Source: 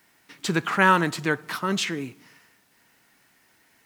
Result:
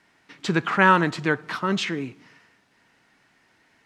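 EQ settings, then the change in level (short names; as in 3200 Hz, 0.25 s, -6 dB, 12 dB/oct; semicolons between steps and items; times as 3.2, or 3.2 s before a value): air absorption 65 m; high shelf 6400 Hz -5 dB; +2.0 dB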